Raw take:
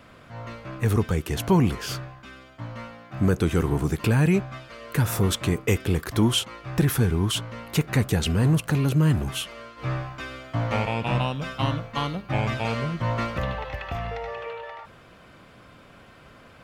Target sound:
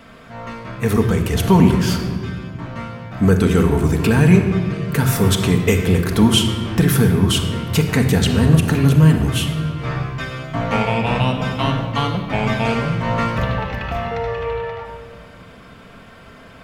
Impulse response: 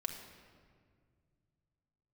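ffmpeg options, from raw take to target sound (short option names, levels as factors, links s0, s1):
-filter_complex "[1:a]atrim=start_sample=2205[s0];[0:a][s0]afir=irnorm=-1:irlink=0,volume=2.24"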